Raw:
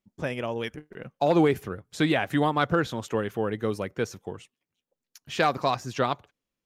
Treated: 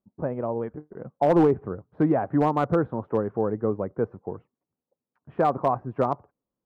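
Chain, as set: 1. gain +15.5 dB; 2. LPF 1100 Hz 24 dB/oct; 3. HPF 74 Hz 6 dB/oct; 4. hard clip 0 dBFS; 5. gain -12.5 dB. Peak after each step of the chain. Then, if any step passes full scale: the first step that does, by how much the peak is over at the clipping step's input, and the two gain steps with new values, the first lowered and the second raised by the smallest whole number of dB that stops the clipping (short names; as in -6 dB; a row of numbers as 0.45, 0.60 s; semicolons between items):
+4.5, +4.0, +4.5, 0.0, -12.5 dBFS; step 1, 4.5 dB; step 1 +10.5 dB, step 5 -7.5 dB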